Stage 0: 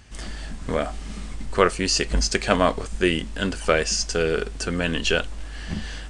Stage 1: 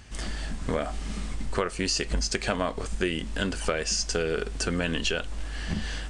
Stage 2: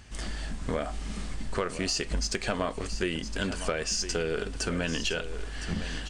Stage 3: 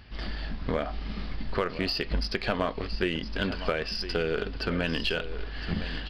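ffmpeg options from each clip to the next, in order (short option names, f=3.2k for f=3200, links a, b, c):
-filter_complex "[0:a]asplit=2[a][b];[b]alimiter=limit=-10dB:level=0:latency=1:release=237,volume=2.5dB[c];[a][c]amix=inputs=2:normalize=0,acompressor=threshold=-17dB:ratio=5,volume=-6.5dB"
-af "asoftclip=type=tanh:threshold=-13dB,aecho=1:1:1012:0.266,volume=-2dB"
-af "aresample=11025,aresample=44100,aeval=exprs='0.158*(cos(1*acos(clip(val(0)/0.158,-1,1)))-cos(1*PI/2))+0.00398*(cos(7*acos(clip(val(0)/0.158,-1,1)))-cos(7*PI/2))':c=same,volume=2dB"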